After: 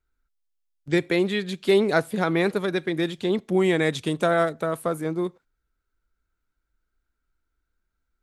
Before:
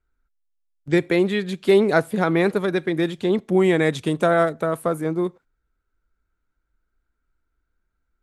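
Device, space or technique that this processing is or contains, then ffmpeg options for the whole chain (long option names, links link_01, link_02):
presence and air boost: -af "equalizer=frequency=4300:width_type=o:width=1.8:gain=4.5,highshelf=frequency=10000:gain=3.5,volume=-3.5dB"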